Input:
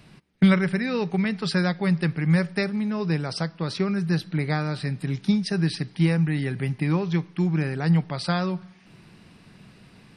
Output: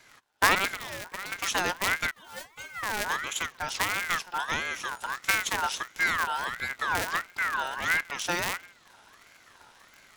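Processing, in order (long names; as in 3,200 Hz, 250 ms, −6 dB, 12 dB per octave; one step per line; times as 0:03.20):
sub-harmonics by changed cycles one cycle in 2, inverted
high-pass filter 170 Hz 12 dB per octave
bass and treble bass +1 dB, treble +6 dB
0:00.70–0:01.32: downward compressor 10 to 1, threshold −30 dBFS, peak gain reduction 11.5 dB
0:02.11–0:02.83: stiff-string resonator 310 Hz, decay 0.24 s, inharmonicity 0.002
0:04.45–0:05.12: steady tone 8,000 Hz −51 dBFS
ring modulator whose carrier an LFO sweeps 1,500 Hz, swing 25%, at 1.5 Hz
level −1 dB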